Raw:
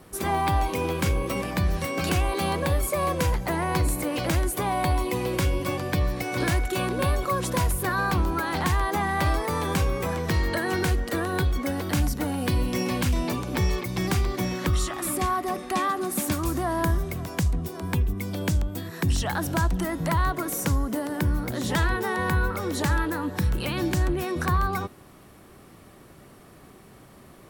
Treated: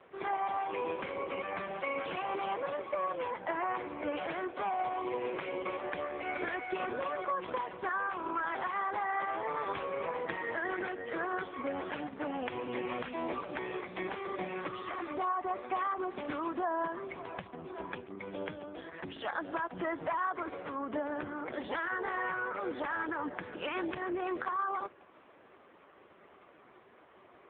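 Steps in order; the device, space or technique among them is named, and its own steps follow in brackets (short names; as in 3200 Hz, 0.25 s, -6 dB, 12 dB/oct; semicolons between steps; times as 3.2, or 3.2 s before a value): 8.35–8.85 dynamic EQ 4700 Hz, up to +5 dB, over -51 dBFS, Q 4.2; voicemail (BPF 430–2900 Hz; compressor 6:1, threshold -29 dBFS, peak gain reduction 7 dB; AMR-NB 4.75 kbps 8000 Hz)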